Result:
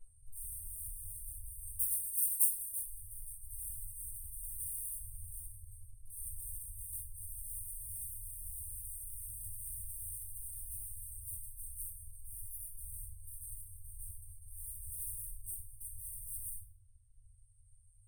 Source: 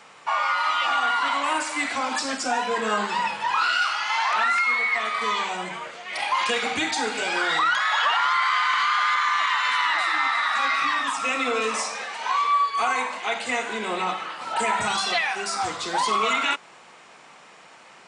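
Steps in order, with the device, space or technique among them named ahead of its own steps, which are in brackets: valve radio (BPF 120–4600 Hz; tube stage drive 40 dB, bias 0.45; core saturation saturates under 810 Hz); reverb removal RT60 1.9 s; FFT band-reject 110–8400 Hz; 1.79–2.84 tilt +4 dB/oct; shoebox room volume 86 m³, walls mixed, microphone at 2.1 m; gain +10 dB

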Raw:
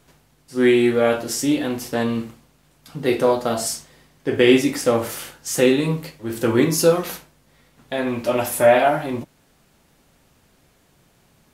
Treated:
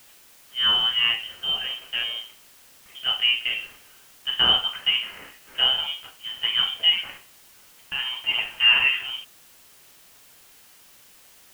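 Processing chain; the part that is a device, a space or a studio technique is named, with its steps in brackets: scrambled radio voice (BPF 310–3000 Hz; inverted band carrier 3400 Hz; white noise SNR 26 dB); gain -3.5 dB

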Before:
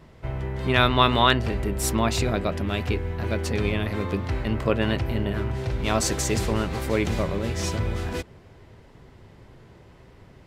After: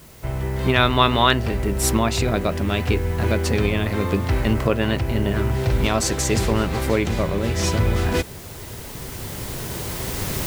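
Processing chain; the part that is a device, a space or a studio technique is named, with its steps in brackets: cheap recorder with automatic gain (white noise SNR 27 dB; recorder AGC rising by 6 dB/s); gain +2 dB

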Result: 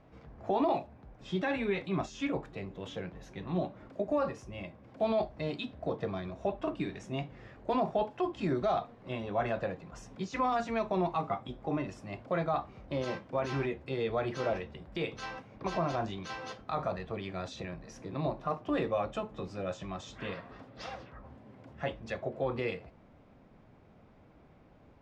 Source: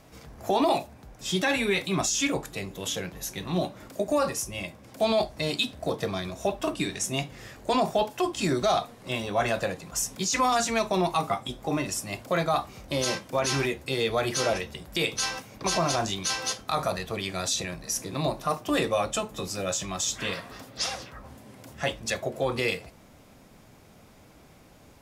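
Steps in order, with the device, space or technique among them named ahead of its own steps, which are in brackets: phone in a pocket (LPF 3300 Hz 12 dB/oct; high shelf 2100 Hz -10 dB); gain -4.5 dB

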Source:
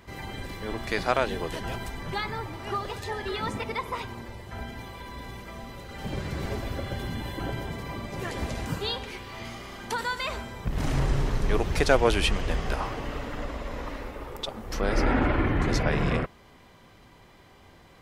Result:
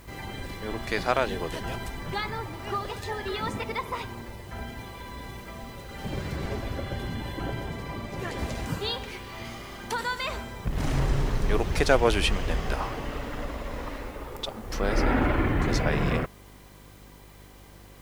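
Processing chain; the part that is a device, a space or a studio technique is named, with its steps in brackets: video cassette with head-switching buzz (buzz 50 Hz, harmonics 11, -52 dBFS -5 dB/oct; white noise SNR 30 dB); 6.36–8.39 high shelf 6600 Hz -4.5 dB

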